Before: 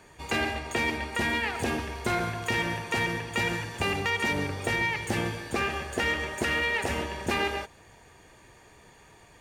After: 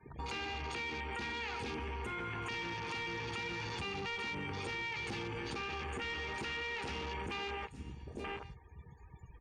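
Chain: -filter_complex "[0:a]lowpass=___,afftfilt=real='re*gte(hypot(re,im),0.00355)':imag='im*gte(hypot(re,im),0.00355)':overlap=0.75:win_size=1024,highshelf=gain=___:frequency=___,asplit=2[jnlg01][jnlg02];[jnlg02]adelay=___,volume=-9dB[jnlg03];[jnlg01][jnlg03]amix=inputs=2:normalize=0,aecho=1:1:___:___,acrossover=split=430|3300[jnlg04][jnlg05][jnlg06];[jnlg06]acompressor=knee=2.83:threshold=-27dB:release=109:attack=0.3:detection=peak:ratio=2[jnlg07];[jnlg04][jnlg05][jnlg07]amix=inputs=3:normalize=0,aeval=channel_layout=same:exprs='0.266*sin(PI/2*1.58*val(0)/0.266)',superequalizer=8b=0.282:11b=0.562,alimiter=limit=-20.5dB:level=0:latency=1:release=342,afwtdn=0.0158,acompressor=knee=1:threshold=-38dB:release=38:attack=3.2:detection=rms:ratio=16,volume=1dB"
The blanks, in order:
11000, 7, 2000, 15, 885, 0.0891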